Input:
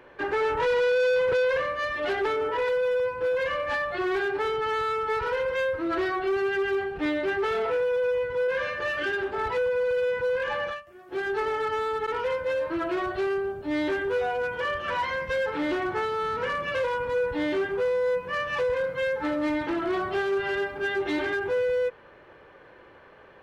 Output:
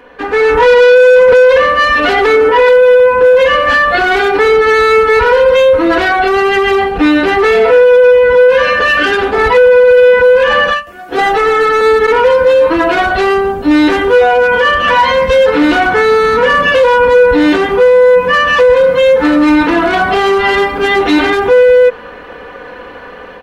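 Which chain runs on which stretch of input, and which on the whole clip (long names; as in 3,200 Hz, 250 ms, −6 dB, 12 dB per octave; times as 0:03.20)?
0:11.18–0:11.81: parametric band 720 Hz +6 dB 0.42 octaves + mains-hum notches 60/120/180/240/300/360/420/480/540/600 Hz + comb filter 6.1 ms, depth 74%
whole clip: comb filter 4.1 ms, depth 76%; automatic gain control gain up to 10 dB; boost into a limiter +11 dB; level −1 dB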